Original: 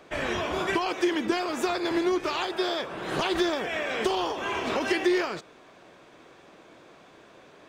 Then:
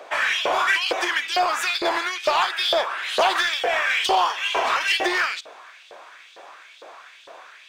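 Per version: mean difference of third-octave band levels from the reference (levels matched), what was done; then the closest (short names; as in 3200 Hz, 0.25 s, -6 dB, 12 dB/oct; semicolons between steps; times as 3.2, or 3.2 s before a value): 8.5 dB: LFO high-pass saw up 2.2 Hz 520–3800 Hz; in parallel at -5.5 dB: hard clip -29 dBFS, distortion -7 dB; on the sum: gain +4 dB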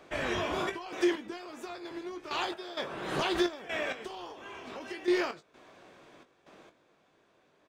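5.5 dB: step gate "xxx.x.....x." 65 bpm -12 dB; doubler 20 ms -9 dB; gain -3.5 dB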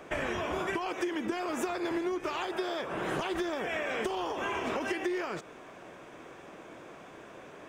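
4.0 dB: compressor, threshold -34 dBFS, peak gain reduction 14 dB; bell 4200 Hz -10 dB 0.56 oct; gain +4 dB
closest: third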